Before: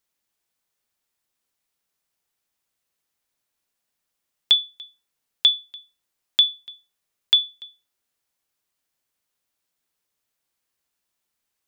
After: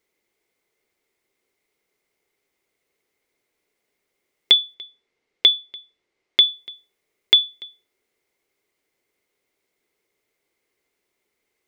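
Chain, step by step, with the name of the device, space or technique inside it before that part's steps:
inside a helmet (high-shelf EQ 5,400 Hz −5 dB; hollow resonant body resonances 400/2,100 Hz, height 15 dB, ringing for 20 ms)
0:04.74–0:06.48: low-pass filter 5,500 Hz 12 dB per octave
level +3.5 dB

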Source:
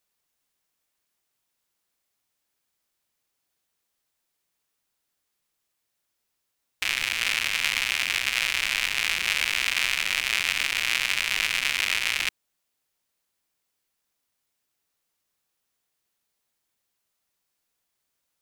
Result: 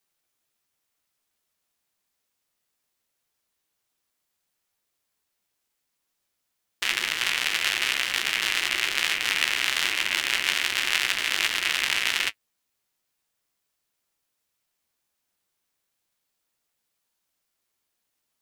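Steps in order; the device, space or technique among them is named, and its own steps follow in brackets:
alien voice (ring modulation 360 Hz; flanger 1.3 Hz, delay 9 ms, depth 7.7 ms, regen −38%)
level +7 dB

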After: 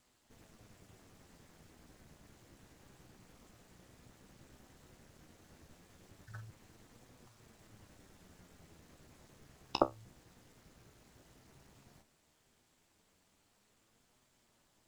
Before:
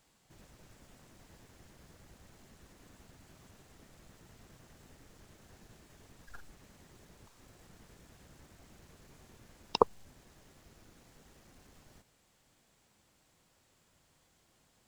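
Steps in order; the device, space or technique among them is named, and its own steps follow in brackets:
alien voice (ring modulation 110 Hz; flanger 0.14 Hz, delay 7.9 ms, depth 9.5 ms, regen +58%)
level +4.5 dB

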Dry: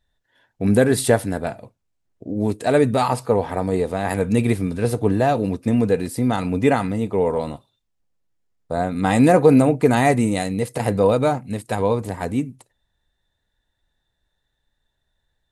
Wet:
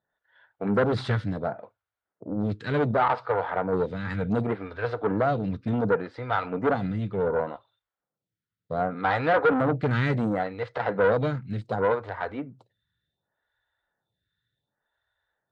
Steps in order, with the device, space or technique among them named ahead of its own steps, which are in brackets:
vibe pedal into a guitar amplifier (phaser with staggered stages 0.68 Hz; tube saturation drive 18 dB, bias 0.5; loudspeaker in its box 110–3,800 Hz, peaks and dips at 110 Hz +5 dB, 250 Hz −7 dB, 360 Hz −4 dB, 1,400 Hz +8 dB, 2,600 Hz −6 dB)
level +2 dB

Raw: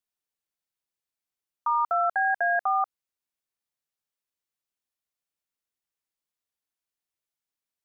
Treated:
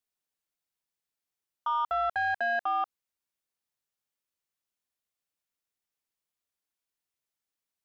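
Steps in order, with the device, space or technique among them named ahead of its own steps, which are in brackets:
soft clipper into limiter (soft clipping −19 dBFS, distortion −20 dB; brickwall limiter −23 dBFS, peak gain reduction 2.5 dB)

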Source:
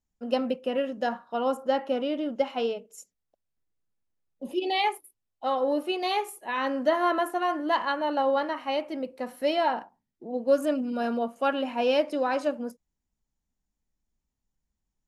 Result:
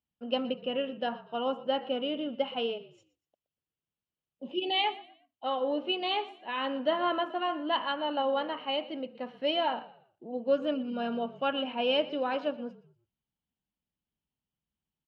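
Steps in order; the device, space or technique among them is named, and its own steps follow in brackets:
frequency-shifting delay pedal into a guitar cabinet (echo with shifted repeats 120 ms, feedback 31%, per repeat −43 Hz, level −18 dB; loudspeaker in its box 81–3,900 Hz, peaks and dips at 150 Hz +4 dB, 1,900 Hz −3 dB, 3,000 Hz +10 dB)
level −4.5 dB

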